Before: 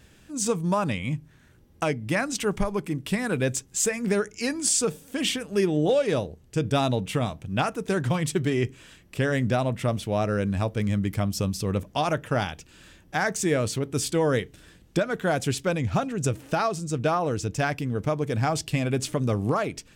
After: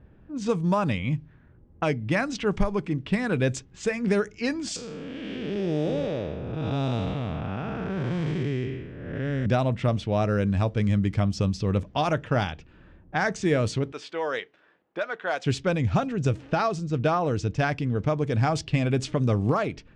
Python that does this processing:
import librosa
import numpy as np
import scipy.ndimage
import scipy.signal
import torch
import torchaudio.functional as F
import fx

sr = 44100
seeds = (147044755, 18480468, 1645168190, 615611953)

y = fx.spec_blur(x, sr, span_ms=397.0, at=(4.76, 9.46))
y = fx.highpass(y, sr, hz=660.0, slope=12, at=(13.92, 15.46))
y = scipy.signal.sosfilt(scipy.signal.butter(2, 5900.0, 'lowpass', fs=sr, output='sos'), y)
y = fx.env_lowpass(y, sr, base_hz=1000.0, full_db=-20.5)
y = fx.low_shelf(y, sr, hz=150.0, db=4.5)